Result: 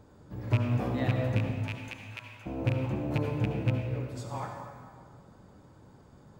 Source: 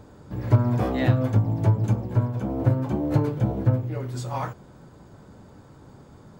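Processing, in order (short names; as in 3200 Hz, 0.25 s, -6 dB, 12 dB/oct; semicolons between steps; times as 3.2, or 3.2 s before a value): rattling part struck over -15 dBFS, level -15 dBFS; 1.51–2.46 HPF 1400 Hz 12 dB/oct; reverb RT60 2.0 s, pre-delay 58 ms, DRR 3 dB; gain -8.5 dB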